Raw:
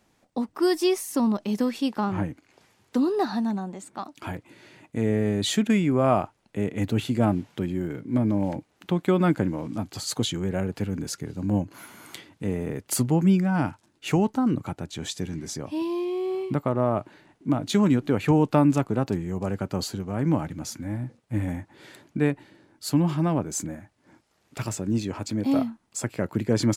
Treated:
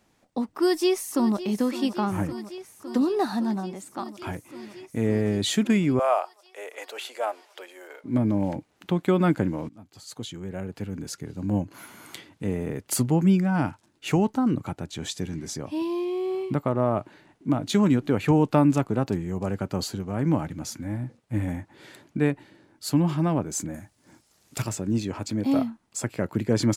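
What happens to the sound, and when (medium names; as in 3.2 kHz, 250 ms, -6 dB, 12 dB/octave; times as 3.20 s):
0.53–1.43 s: echo throw 560 ms, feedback 85%, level -14 dB
5.99–8.04 s: steep high-pass 500 Hz
9.69–11.80 s: fade in, from -21.5 dB
23.74–24.62 s: tone controls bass +3 dB, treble +12 dB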